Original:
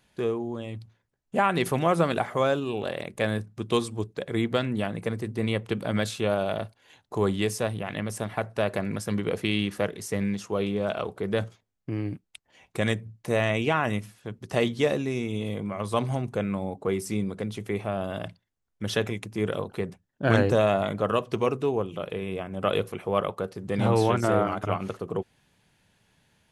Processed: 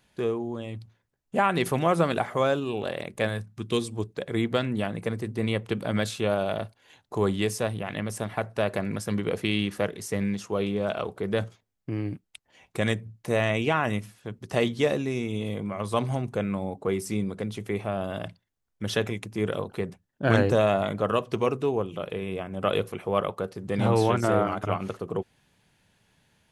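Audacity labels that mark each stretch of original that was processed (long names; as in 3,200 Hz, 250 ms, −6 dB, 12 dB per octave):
3.270000	3.920000	parametric band 210 Hz → 1,400 Hz −10 dB 0.97 octaves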